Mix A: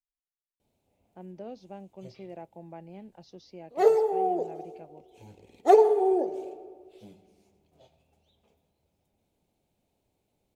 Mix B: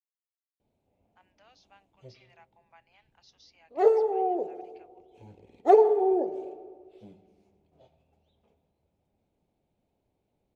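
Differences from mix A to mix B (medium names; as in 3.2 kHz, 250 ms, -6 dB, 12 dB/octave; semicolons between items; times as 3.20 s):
speech: add high-pass 1.1 kHz 24 dB/octave; background: add low-pass 1.8 kHz 6 dB/octave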